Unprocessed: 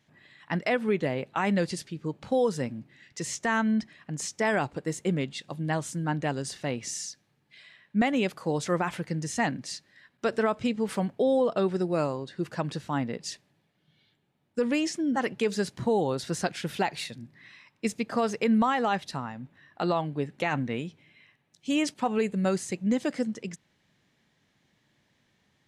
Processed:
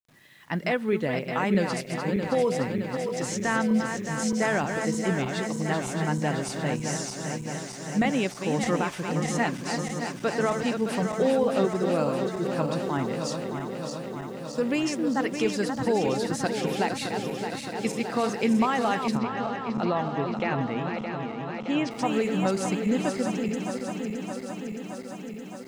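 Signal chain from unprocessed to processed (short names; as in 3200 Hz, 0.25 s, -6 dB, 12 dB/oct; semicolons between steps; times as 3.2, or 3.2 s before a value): regenerating reverse delay 0.309 s, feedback 84%, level -6.5 dB; bit-crush 10-bit; 19.17–21.91 air absorption 150 m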